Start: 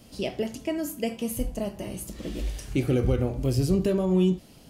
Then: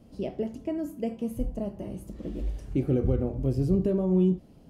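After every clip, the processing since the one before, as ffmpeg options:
ffmpeg -i in.wav -af "tiltshelf=frequency=1300:gain=9,bandreject=frequency=60:width_type=h:width=6,bandreject=frequency=120:width_type=h:width=6,volume=-9dB" out.wav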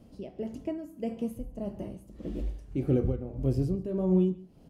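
ffmpeg -i in.wav -af "tremolo=f=1.7:d=0.71,aecho=1:1:139:0.1" out.wav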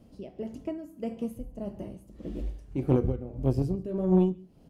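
ffmpeg -i in.wav -af "aeval=exprs='0.2*(cos(1*acos(clip(val(0)/0.2,-1,1)))-cos(1*PI/2))+0.0316*(cos(3*acos(clip(val(0)/0.2,-1,1)))-cos(3*PI/2))':channel_layout=same,volume=4.5dB" out.wav

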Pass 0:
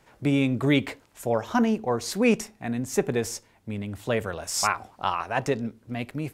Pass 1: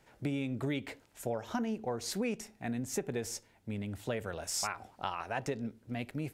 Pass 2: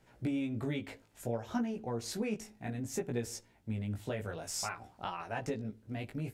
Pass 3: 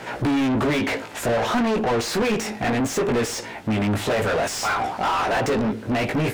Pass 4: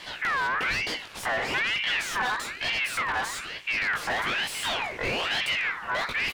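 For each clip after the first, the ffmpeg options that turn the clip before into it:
ffmpeg -i in.wav -af "equalizer=frequency=1100:width_type=o:width=0.27:gain=-6,acompressor=threshold=-26dB:ratio=6,volume=-5dB" out.wav
ffmpeg -i in.wav -af "lowshelf=frequency=280:gain=5.5,flanger=delay=16.5:depth=2.7:speed=0.6" out.wav
ffmpeg -i in.wav -filter_complex "[0:a]asplit=2[link_01][link_02];[link_02]highpass=frequency=720:poles=1,volume=36dB,asoftclip=type=tanh:threshold=-22dB[link_03];[link_01][link_03]amix=inputs=2:normalize=0,lowpass=frequency=2100:poles=1,volume=-6dB,volume=8dB" out.wav
ffmpeg -i in.wav -filter_complex "[0:a]asplit=2[link_01][link_02];[link_02]adelay=1574,volume=-10dB,highshelf=frequency=4000:gain=-35.4[link_03];[link_01][link_03]amix=inputs=2:normalize=0,aeval=exprs='val(0)*sin(2*PI*1900*n/s+1900*0.35/1.1*sin(2*PI*1.1*n/s))':channel_layout=same,volume=-3.5dB" out.wav

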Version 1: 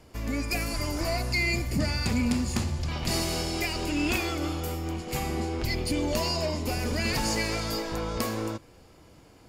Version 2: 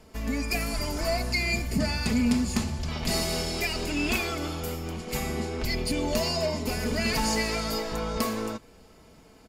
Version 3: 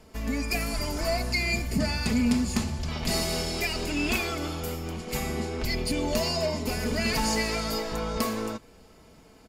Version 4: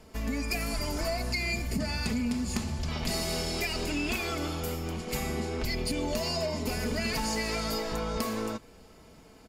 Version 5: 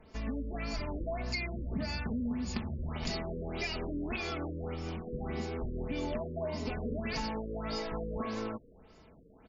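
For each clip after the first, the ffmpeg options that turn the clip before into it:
ffmpeg -i in.wav -af "aecho=1:1:4.6:0.53" out.wav
ffmpeg -i in.wav -af anull out.wav
ffmpeg -i in.wav -af "acompressor=threshold=-27dB:ratio=6" out.wav
ffmpeg -i in.wav -af "afftfilt=real='re*lt(b*sr/1024,560*pow(7300/560,0.5+0.5*sin(2*PI*1.7*pts/sr)))':imag='im*lt(b*sr/1024,560*pow(7300/560,0.5+0.5*sin(2*PI*1.7*pts/sr)))':win_size=1024:overlap=0.75,volume=-4dB" out.wav

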